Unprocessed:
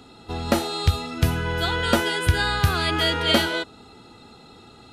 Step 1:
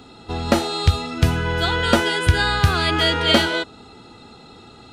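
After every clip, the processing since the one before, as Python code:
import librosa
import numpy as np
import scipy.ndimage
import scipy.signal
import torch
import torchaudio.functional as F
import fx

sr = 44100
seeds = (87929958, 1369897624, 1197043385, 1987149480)

y = fx.peak_eq(x, sr, hz=12000.0, db=-13.5, octaves=0.32)
y = F.gain(torch.from_numpy(y), 3.5).numpy()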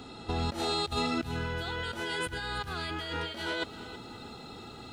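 y = fx.over_compress(x, sr, threshold_db=-27.0, ratio=-1.0)
y = fx.echo_crushed(y, sr, ms=323, feedback_pct=35, bits=8, wet_db=-14.5)
y = F.gain(torch.from_numpy(y), -8.0).numpy()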